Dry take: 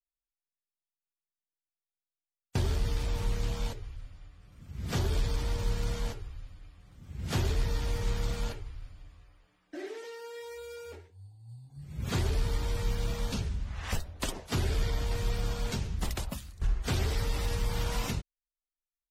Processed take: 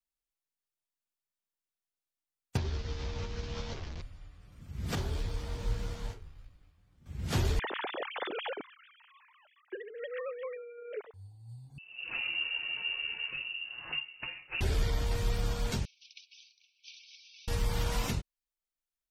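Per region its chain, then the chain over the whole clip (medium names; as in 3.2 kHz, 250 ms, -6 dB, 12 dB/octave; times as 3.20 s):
2.57–4.02 s: one-bit delta coder 32 kbps, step -38.5 dBFS + compression 5:1, threshold -32 dBFS + doubling 13 ms -5 dB
4.95–7.06 s: companding laws mixed up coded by A + treble shelf 6.8 kHz -5.5 dB + detune thickener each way 45 cents
7.59–11.14 s: formants replaced by sine waves + high-pass 200 Hz + compressor with a negative ratio -40 dBFS
11.78–14.61 s: band-stop 880 Hz, Q 14 + feedback comb 190 Hz, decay 0.2 s, mix 70% + frequency inversion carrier 2.8 kHz
15.85–17.48 s: compression 5:1, threshold -39 dBFS + brick-wall FIR band-pass 2.2–6.2 kHz
whole clip: none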